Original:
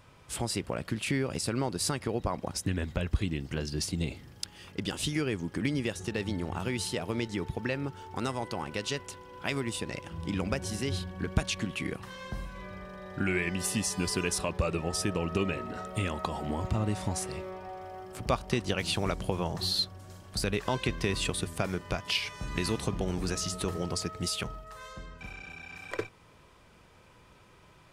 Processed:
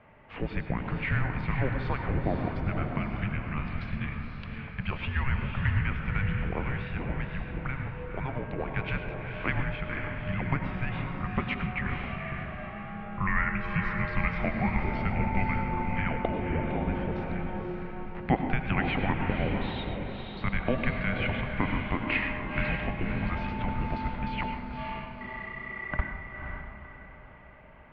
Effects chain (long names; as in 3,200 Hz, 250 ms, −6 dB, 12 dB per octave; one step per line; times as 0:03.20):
0:06.58–0:08.58: downward compressor 2 to 1, threshold −36 dBFS, peak gain reduction 5.5 dB
feedback delay with all-pass diffusion 525 ms, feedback 40%, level −5 dB
convolution reverb RT60 1.0 s, pre-delay 60 ms, DRR 6.5 dB
single-sideband voice off tune −390 Hz 220–2,900 Hz
level +4 dB